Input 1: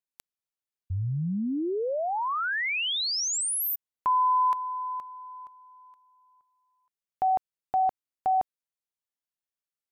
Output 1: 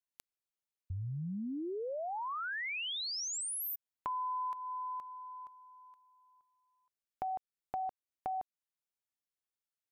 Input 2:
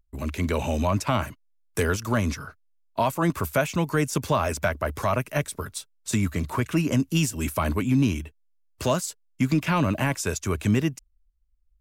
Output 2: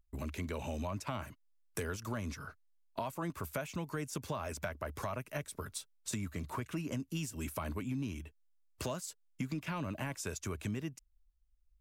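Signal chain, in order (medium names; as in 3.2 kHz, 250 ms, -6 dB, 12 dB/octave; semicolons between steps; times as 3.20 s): compression 3:1, threshold -34 dBFS; trim -4.5 dB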